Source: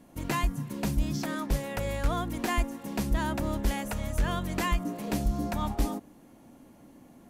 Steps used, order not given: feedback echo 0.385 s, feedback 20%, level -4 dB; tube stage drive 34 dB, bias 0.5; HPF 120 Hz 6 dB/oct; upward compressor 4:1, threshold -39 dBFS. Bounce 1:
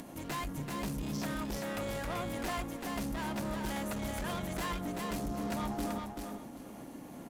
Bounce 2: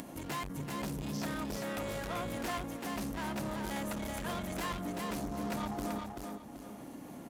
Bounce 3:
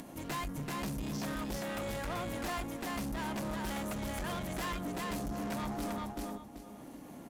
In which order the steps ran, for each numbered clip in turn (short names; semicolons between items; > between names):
HPF > upward compressor > tube stage > feedback echo; tube stage > feedback echo > upward compressor > HPF; feedback echo > upward compressor > HPF > tube stage